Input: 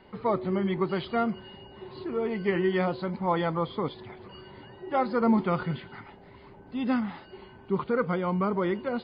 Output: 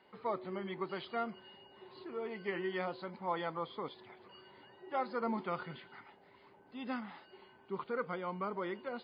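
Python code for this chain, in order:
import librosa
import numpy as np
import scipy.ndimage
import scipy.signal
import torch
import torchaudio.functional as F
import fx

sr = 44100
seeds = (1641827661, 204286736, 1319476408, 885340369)

y = fx.highpass(x, sr, hz=510.0, slope=6)
y = y * 10.0 ** (-7.5 / 20.0)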